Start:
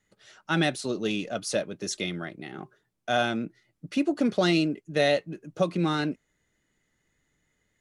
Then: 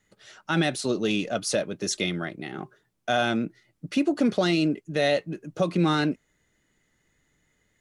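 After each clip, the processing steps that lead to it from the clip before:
brickwall limiter −17.5 dBFS, peak gain reduction 6 dB
level +4 dB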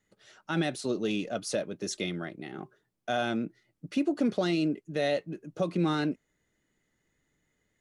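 parametric band 340 Hz +3.5 dB 2.4 octaves
level −7.5 dB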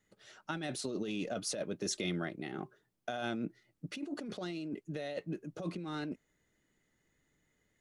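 compressor whose output falls as the input rises −33 dBFS, ratio −1
level −4.5 dB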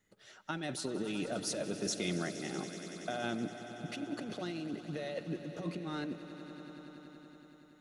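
echo that builds up and dies away 94 ms, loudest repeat 5, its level −16 dB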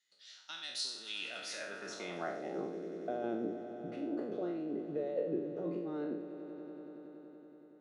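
peak hold with a decay on every bin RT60 0.70 s
band-pass filter sweep 4,300 Hz → 430 Hz, 0:01.01–0:02.70
level +6 dB

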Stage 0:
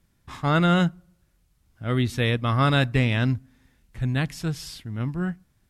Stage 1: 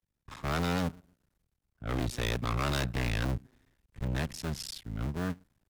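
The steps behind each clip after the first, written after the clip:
sub-harmonics by changed cycles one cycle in 2, muted
hard clipping −26 dBFS, distortion −5 dB
multiband upward and downward expander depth 40%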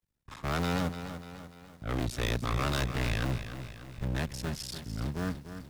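feedback echo at a low word length 294 ms, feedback 55%, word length 9 bits, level −10 dB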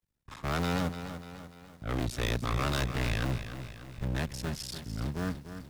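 no processing that can be heard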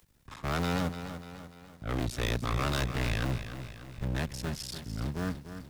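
upward compression, threshold −50 dBFS

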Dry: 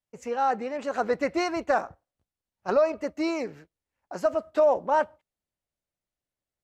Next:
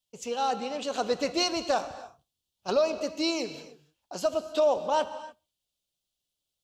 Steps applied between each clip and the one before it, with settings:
high shelf with overshoot 2,500 Hz +9 dB, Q 3
reverb whose tail is shaped and stops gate 320 ms flat, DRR 11 dB
level −2 dB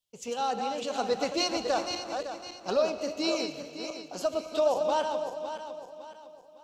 feedback delay that plays each chunk backwards 279 ms, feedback 60%, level −6 dB
level −2 dB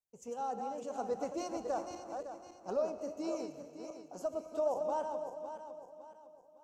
drawn EQ curve 910 Hz 0 dB, 4,000 Hz −20 dB, 6,200 Hz −4 dB
level −7.5 dB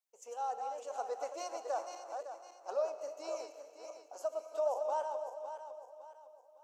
high-pass filter 530 Hz 24 dB per octave
level +1 dB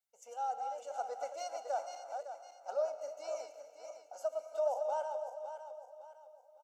comb filter 1.4 ms, depth 76%
level −3.5 dB

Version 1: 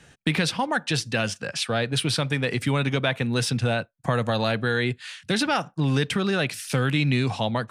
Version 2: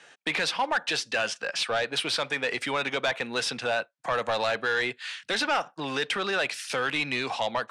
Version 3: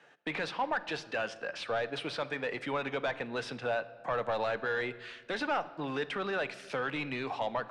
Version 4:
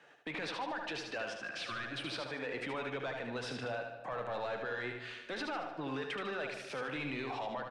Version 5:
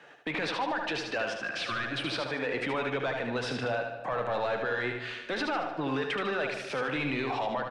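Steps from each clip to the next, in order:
high-pass filter 550 Hz 12 dB per octave; soft clipping −22 dBFS, distortion −12 dB; high-frequency loss of the air 60 metres; level +3.5 dB
low-pass filter 1,200 Hz 6 dB per octave; rectangular room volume 2,100 cubic metres, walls mixed, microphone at 0.39 metres; level −3 dB
healed spectral selection 0:01.42–0:02.08, 400–1,000 Hz; brickwall limiter −31 dBFS, peak gain reduction 9 dB; on a send: repeating echo 75 ms, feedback 47%, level −5.5 dB; on the sum: level −1 dB
high-shelf EQ 7,500 Hz −6.5 dB; level +8 dB

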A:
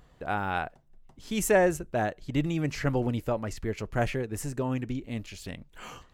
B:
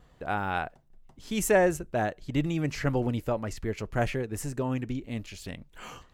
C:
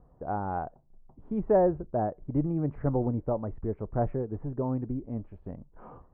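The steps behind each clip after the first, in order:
noise gate with hold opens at −54 dBFS
low-pass filter 1,000 Hz 24 dB per octave

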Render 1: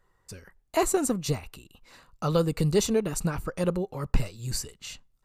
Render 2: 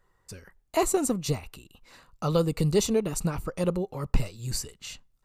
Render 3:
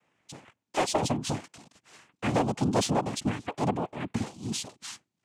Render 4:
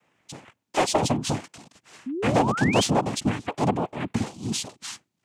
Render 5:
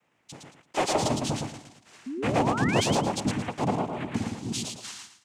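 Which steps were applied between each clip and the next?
dynamic equaliser 1,600 Hz, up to −6 dB, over −53 dBFS, Q 4.3
cochlear-implant simulation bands 4; soft clipping −17 dBFS, distortion −15 dB
sound drawn into the spectrogram rise, 0:02.06–0:02.83, 240–3,400 Hz −34 dBFS; level +4.5 dB
repeating echo 112 ms, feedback 29%, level −4 dB; level −4 dB

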